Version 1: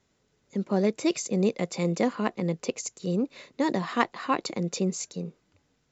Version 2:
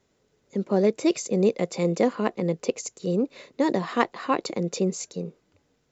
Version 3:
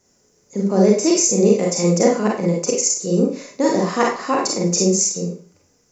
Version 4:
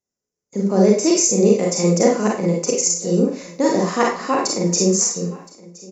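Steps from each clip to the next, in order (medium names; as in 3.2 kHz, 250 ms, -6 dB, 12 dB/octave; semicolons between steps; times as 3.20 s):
peaking EQ 460 Hz +5.5 dB 1.2 oct
resonant high shelf 4.6 kHz +7 dB, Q 3; Schroeder reverb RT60 0.38 s, combs from 31 ms, DRR -2 dB; trim +2.5 dB
gate -46 dBFS, range -26 dB; delay 1019 ms -22 dB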